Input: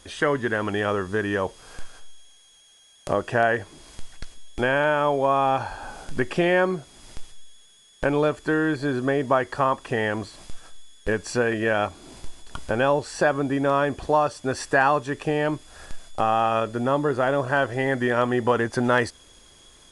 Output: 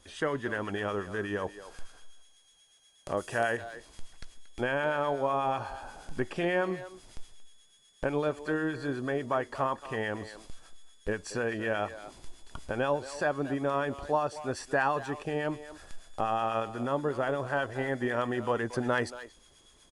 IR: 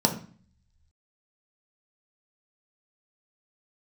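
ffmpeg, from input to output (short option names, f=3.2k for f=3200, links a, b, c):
-filter_complex "[0:a]asettb=1/sr,asplit=3[a][b][c];[a]atrim=end=3.174[d];[b]atrim=start=3.17:end=3.57,asetpts=PTS-STARTPTS,afade=t=in:d=0.004:c=qsin,afade=t=out:st=0.396:d=0.004:c=qsin,aemphasis=mode=production:type=75fm[e];[c]atrim=start=3.566[f];[d][e]acrossfade=d=0.004:c1=hsin:c2=qsin[g];[g][f]acrossfade=d=0.004:c1=qsin:c2=hsin,asplit=2[h][i];[i]adelay=230,highpass=300,lowpass=3.4k,asoftclip=type=hard:threshold=-14.5dB,volume=-13dB[j];[h][j]amix=inputs=2:normalize=0,acrossover=split=1100[k][l];[k]aeval=exprs='val(0)*(1-0.5/2+0.5/2*cos(2*PI*8.2*n/s))':c=same[m];[l]aeval=exprs='val(0)*(1-0.5/2-0.5/2*cos(2*PI*8.2*n/s))':c=same[n];[m][n]amix=inputs=2:normalize=0,volume=-6dB"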